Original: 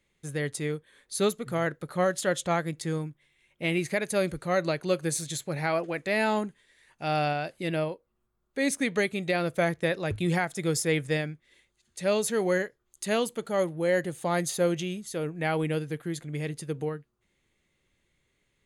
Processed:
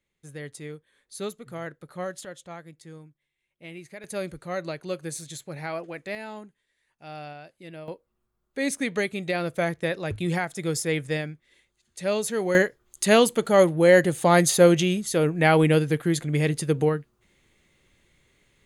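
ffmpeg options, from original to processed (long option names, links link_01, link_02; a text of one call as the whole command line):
ffmpeg -i in.wav -af "asetnsamples=nb_out_samples=441:pad=0,asendcmd='2.25 volume volume -14dB;4.04 volume volume -5dB;6.15 volume volume -12.5dB;7.88 volume volume 0dB;12.55 volume volume 9.5dB',volume=-7.5dB" out.wav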